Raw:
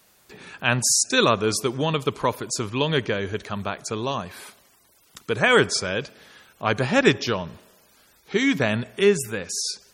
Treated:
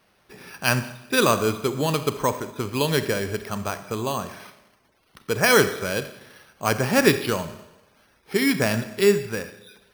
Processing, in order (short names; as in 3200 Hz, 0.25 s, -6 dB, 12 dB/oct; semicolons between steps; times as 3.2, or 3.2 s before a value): Schroeder reverb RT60 0.91 s, combs from 28 ms, DRR 10.5 dB; careless resampling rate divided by 6×, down filtered, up hold